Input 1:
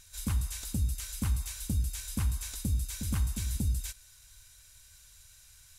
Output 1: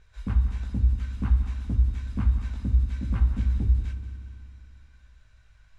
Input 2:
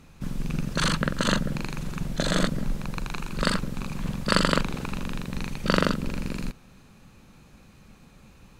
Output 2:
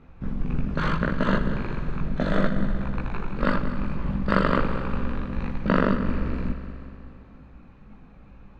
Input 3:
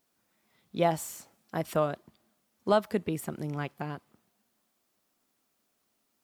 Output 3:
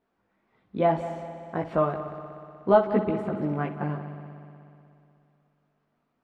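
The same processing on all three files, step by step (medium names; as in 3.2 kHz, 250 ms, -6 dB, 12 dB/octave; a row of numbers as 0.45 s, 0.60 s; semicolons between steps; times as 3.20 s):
low-pass 1.7 kHz 12 dB/octave; chorus voices 6, 0.61 Hz, delay 18 ms, depth 2.6 ms; multi-head delay 61 ms, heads first and third, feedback 72%, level -14 dB; normalise loudness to -27 LUFS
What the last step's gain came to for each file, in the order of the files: +6.5 dB, +4.5 dB, +7.5 dB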